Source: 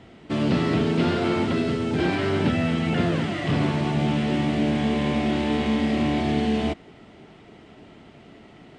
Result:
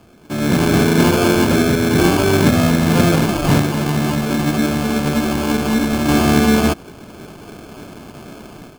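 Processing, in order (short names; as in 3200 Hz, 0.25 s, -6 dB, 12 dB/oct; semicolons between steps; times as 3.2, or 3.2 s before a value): AGC gain up to 12 dB; 3.6–6.09 flange 1.7 Hz, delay 0.5 ms, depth 6.4 ms, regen +60%; sample-and-hold 23×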